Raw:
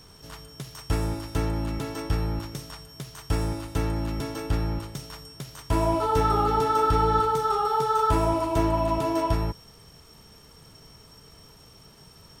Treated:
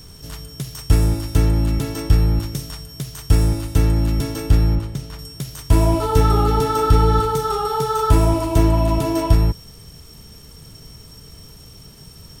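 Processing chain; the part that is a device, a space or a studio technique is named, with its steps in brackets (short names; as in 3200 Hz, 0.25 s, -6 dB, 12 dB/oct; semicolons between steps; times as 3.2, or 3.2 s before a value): 4.75–5.19 high shelf 4500 Hz -11 dB; smiley-face EQ (low shelf 180 Hz +8 dB; bell 970 Hz -5 dB 1.6 oct; high shelf 7400 Hz +7.5 dB); gain +5.5 dB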